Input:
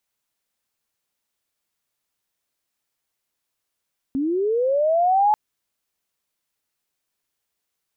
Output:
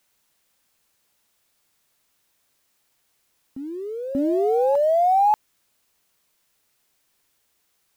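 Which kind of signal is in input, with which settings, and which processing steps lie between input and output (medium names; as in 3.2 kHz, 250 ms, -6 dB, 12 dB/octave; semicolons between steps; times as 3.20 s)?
sweep linear 260 Hz -> 860 Hz -20 dBFS -> -13.5 dBFS 1.19 s
companding laws mixed up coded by mu; reverse echo 586 ms -10 dB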